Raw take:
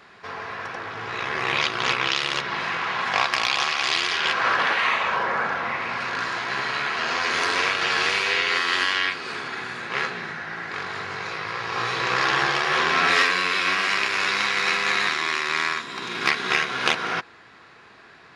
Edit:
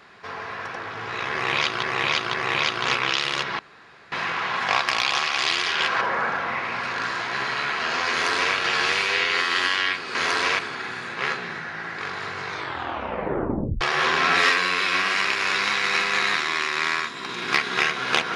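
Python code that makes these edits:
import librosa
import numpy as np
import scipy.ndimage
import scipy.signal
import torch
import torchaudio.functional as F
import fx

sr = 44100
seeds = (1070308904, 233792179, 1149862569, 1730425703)

y = fx.edit(x, sr, fx.repeat(start_s=1.32, length_s=0.51, count=3),
    fx.insert_room_tone(at_s=2.57, length_s=0.53),
    fx.cut(start_s=4.46, length_s=0.72),
    fx.duplicate(start_s=7.28, length_s=0.44, to_s=9.32),
    fx.tape_stop(start_s=11.2, length_s=1.34), tone=tone)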